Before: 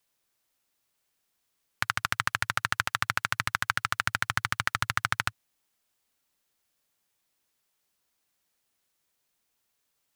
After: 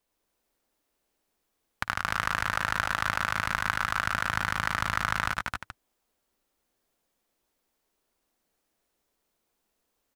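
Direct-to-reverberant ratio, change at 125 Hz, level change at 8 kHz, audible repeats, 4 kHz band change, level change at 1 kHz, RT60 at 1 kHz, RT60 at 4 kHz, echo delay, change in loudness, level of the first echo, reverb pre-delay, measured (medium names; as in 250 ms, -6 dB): no reverb, +0.5 dB, -2.5 dB, 4, -2.0 dB, +2.0 dB, no reverb, no reverb, 54 ms, +0.5 dB, -16.5 dB, no reverb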